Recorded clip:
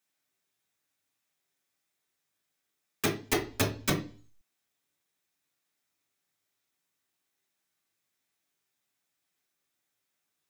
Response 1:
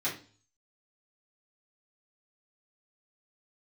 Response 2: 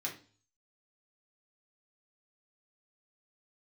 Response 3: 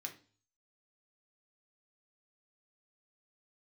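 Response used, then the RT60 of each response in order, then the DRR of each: 2; 0.40 s, 0.40 s, 0.40 s; -9.5 dB, -3.0 dB, 1.5 dB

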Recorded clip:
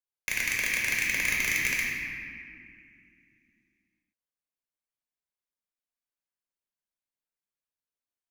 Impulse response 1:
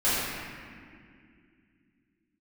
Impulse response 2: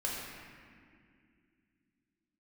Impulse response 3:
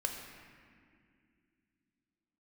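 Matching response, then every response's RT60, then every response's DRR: 2; 2.3 s, 2.3 s, 2.1 s; -13.0 dB, -4.0 dB, 2.5 dB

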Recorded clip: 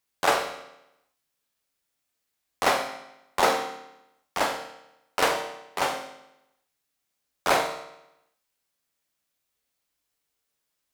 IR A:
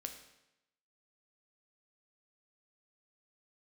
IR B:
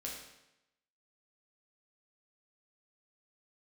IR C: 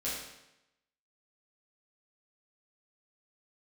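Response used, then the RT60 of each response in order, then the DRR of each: A; 0.90 s, 0.90 s, 0.90 s; 4.5 dB, -3.5 dB, -9.5 dB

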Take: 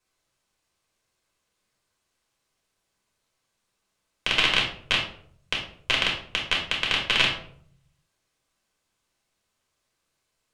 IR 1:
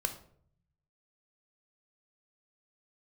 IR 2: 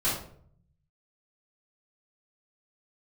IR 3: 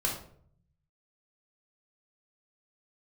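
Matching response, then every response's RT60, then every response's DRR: 3; 0.60 s, 0.55 s, 0.60 s; 7.0 dB, -10.5 dB, -1.5 dB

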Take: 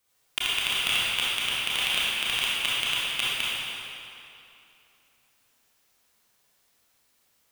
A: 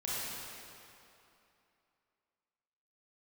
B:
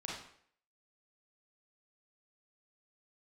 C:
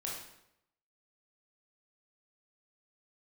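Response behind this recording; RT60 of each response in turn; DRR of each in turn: A; 2.8 s, 0.60 s, 0.80 s; -9.0 dB, -4.5 dB, -4.0 dB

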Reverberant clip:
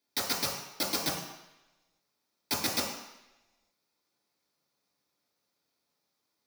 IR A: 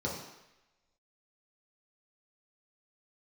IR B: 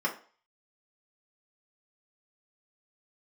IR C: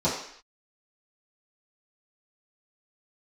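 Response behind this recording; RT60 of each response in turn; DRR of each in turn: A; 0.95 s, 0.40 s, no single decay rate; -5.0 dB, -3.5 dB, -11.5 dB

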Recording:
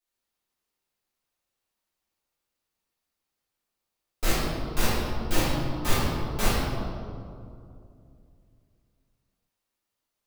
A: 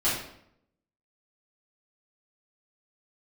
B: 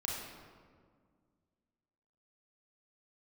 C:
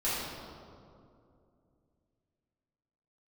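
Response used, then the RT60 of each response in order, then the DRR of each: C; 0.70 s, 1.9 s, 2.5 s; -11.0 dB, -3.5 dB, -11.5 dB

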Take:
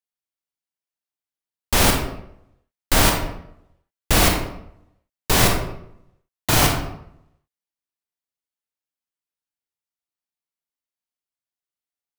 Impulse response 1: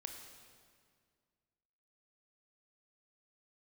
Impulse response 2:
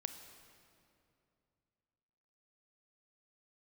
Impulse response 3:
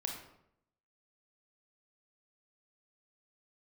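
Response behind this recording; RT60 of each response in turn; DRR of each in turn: 3; 2.0 s, 2.6 s, 0.75 s; 3.5 dB, 7.5 dB, 1.0 dB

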